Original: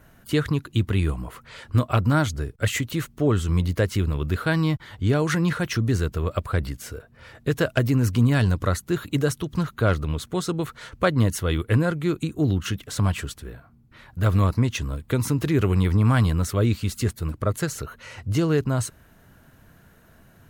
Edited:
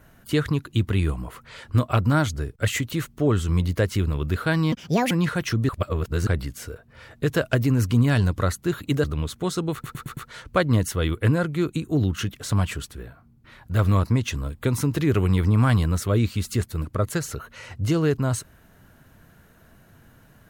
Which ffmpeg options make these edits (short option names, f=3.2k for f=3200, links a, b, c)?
-filter_complex "[0:a]asplit=10[a][b][c][d][e][f][g][h][i][j];[a]atrim=end=4.724[k];[b]atrim=start=4.72:end=5.35,asetpts=PTS-STARTPTS,asetrate=71442,aresample=44100[l];[c]atrim=start=5.346:end=5.932[m];[d]atrim=start=5.928:end=6.512,asetpts=PTS-STARTPTS,areverse[n];[e]atrim=start=6.508:end=9.282[o];[f]atrim=start=9.948:end=10.752[p];[g]atrim=start=10.638:end=10.752[q];[h]atrim=start=10.638:end=10.752[r];[i]atrim=start=10.638:end=10.752[s];[j]atrim=start=10.638[t];[k][l]acrossfade=d=0.004:c1=hsin:c2=hsin[u];[u][m]acrossfade=d=0.004:c1=hsin:c2=hsin[v];[v][n]acrossfade=d=0.004:c1=hsin:c2=hsin[w];[w][o]acrossfade=d=0.004:c1=hsin:c2=hsin[x];[x][p]acrossfade=d=0.004:c1=hsin:c2=hsin[y];[y][q]acrossfade=d=0.004:c1=hsin:c2=hsin[z];[z][r]acrossfade=d=0.004:c1=hsin:c2=hsin[aa];[aa][s]acrossfade=d=0.004:c1=hsin:c2=hsin[ab];[ab][t]acrossfade=d=0.004:c1=hsin:c2=hsin"